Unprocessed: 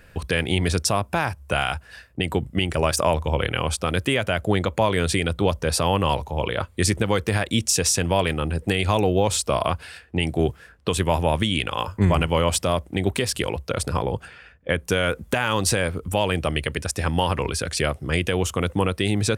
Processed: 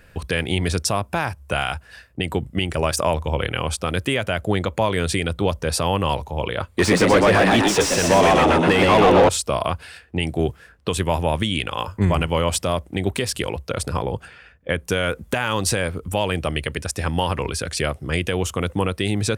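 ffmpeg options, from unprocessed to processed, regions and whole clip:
-filter_complex "[0:a]asettb=1/sr,asplit=3[s0][s1][s2];[s0]atrim=end=6.774[s3];[s1]atrim=start=6.77:end=9.29,asetpts=PTS-STARTPTS,afade=t=in:d=0.004:c=qsin,afade=t=out:st=2.516:d=0.004:c=qsin,asplit=7[s4][s5][s6][s7][s8][s9][s10];[s5]adelay=124,afreqshift=86,volume=0.708[s11];[s6]adelay=248,afreqshift=172,volume=0.331[s12];[s7]adelay=372,afreqshift=258,volume=0.157[s13];[s8]adelay=496,afreqshift=344,volume=0.0733[s14];[s9]adelay=620,afreqshift=430,volume=0.0347[s15];[s10]adelay=744,afreqshift=516,volume=0.0162[s16];[s4][s11][s12][s13][s14][s15][s16]amix=inputs=7:normalize=0,atrim=end_sample=111132,asplit=2[s17][s18];[s18]highpass=f=720:p=1,volume=17.8,asoftclip=type=tanh:threshold=0.596[s19];[s17][s19]amix=inputs=2:normalize=0,lowpass=f=1300:p=1,volume=0.501[s20];[s2]atrim=start=9.286[s21];[s3][s20]acrossfade=d=0.004:c1=hsin:c2=qsin[s22];[s22][s21]acrossfade=d=0.004:c1=qsin:c2=hsin"

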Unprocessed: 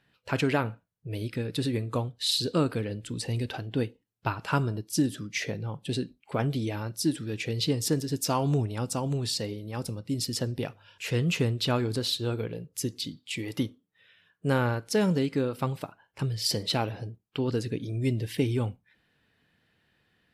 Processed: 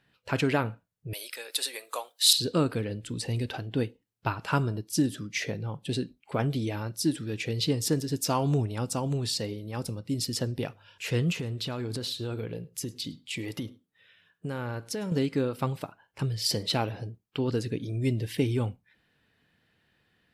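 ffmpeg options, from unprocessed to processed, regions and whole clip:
-filter_complex "[0:a]asettb=1/sr,asplit=3[s0][s1][s2];[s0]atrim=end=1.134[s3];[s1]atrim=start=1.13:end=2.33,asetpts=PTS-STARTPTS,afade=t=in:d=0.004:c=qsin,afade=t=out:st=1.196:d=0.004:c=qsin,highpass=f=590:w=0.5412,highpass=f=590:w=1.3066,aemphasis=mode=production:type=75kf[s4];[s2]atrim=start=2.326[s5];[s3][s4]acrossfade=d=0.004:c1=hsin:c2=qsin[s6];[s6][s5]acrossfade=d=0.004:c1=qsin:c2=hsin,asettb=1/sr,asplit=3[s7][s8][s9];[s7]atrim=end=11.324[s10];[s8]atrim=start=11.32:end=15.12,asetpts=PTS-STARTPTS,afade=t=in:d=0.004:c=qsin,afade=t=out:st=3.796:d=0.004:c=qsin,acompressor=threshold=0.0355:ratio=10:attack=3.2:release=140:knee=1:detection=peak,aecho=1:1:105:0.0631,atrim=end_sample=167580[s11];[s9]atrim=start=15.116[s12];[s10][s11]acrossfade=d=0.004:c1=hsin:c2=qsin[s13];[s13][s12]acrossfade=d=0.004:c1=qsin:c2=hsin"

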